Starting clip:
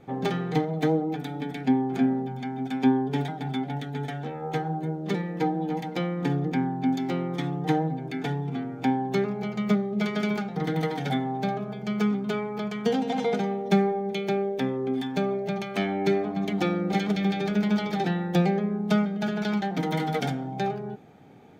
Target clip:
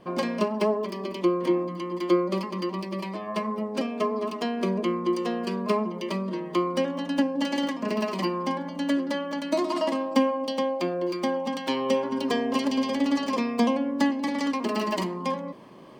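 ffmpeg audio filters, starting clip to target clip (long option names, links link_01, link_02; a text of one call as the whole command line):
ffmpeg -i in.wav -af "areverse,acompressor=mode=upward:threshold=-41dB:ratio=2.5,areverse,asetrate=59535,aresample=44100" out.wav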